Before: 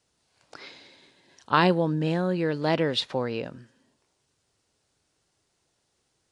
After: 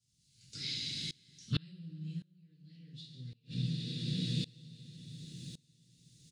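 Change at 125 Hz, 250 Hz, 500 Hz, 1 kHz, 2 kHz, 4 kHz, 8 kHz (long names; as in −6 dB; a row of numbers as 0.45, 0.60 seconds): −5.5 dB, −12.5 dB, −30.0 dB, below −35 dB, −19.0 dB, −5.0 dB, +2.0 dB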